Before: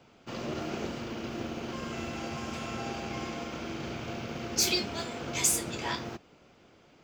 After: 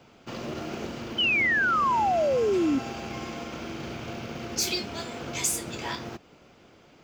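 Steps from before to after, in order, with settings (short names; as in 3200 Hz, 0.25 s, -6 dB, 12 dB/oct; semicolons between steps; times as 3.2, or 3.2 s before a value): in parallel at +1 dB: compressor, threshold -41 dBFS, peak gain reduction 18.5 dB; on the sum: short-mantissa float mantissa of 4-bit; painted sound fall, 1.18–2.79, 260–3100 Hz -21 dBFS; gain -2.5 dB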